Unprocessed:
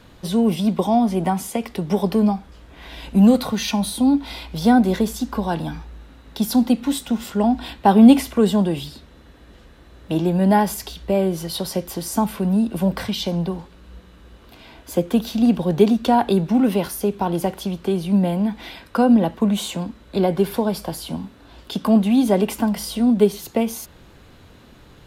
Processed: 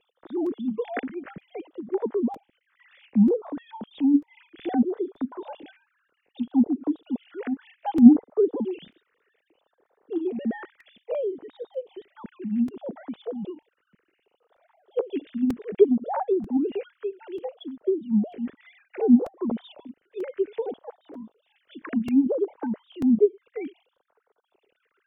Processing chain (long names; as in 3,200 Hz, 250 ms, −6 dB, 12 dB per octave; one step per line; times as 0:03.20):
three sine waves on the formant tracks
all-pass phaser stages 4, 0.63 Hz, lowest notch 730–2,900 Hz
dynamic equaliser 460 Hz, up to +6 dB, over −35 dBFS, Q 3.4
treble cut that deepens with the level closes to 830 Hz, closed at −11.5 dBFS
regular buffer underruns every 0.94 s, samples 128, repeat, from 0:00.46
level −7 dB